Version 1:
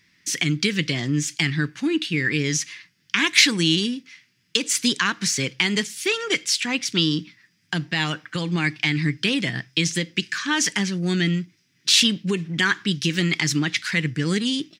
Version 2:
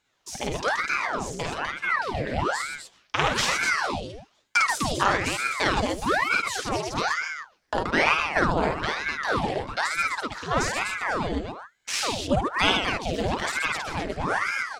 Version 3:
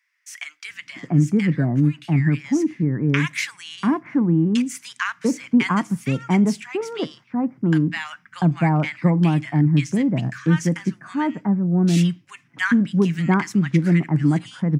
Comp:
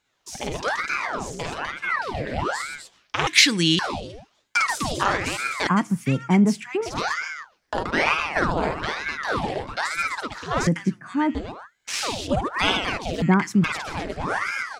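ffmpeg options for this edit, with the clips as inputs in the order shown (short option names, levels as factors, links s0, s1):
-filter_complex "[2:a]asplit=3[s0][s1][s2];[1:a]asplit=5[s3][s4][s5][s6][s7];[s3]atrim=end=3.272[s8];[0:a]atrim=start=3.268:end=3.792[s9];[s4]atrim=start=3.788:end=5.672[s10];[s0]atrim=start=5.668:end=6.862[s11];[s5]atrim=start=6.858:end=10.672[s12];[s1]atrim=start=10.668:end=11.352[s13];[s6]atrim=start=11.348:end=13.222[s14];[s2]atrim=start=13.218:end=13.642[s15];[s7]atrim=start=13.638[s16];[s8][s9]acrossfade=d=0.004:c1=hsin:c2=hsin[s17];[s17][s10]acrossfade=d=0.004:c1=hsin:c2=hsin[s18];[s18][s11]acrossfade=d=0.004:c1=hsin:c2=hsin[s19];[s19][s12]acrossfade=d=0.004:c1=hsin:c2=hsin[s20];[s20][s13]acrossfade=d=0.004:c1=hsin:c2=hsin[s21];[s21][s14]acrossfade=d=0.004:c1=hsin:c2=hsin[s22];[s22][s15]acrossfade=d=0.004:c1=hsin:c2=hsin[s23];[s23][s16]acrossfade=d=0.004:c1=hsin:c2=hsin"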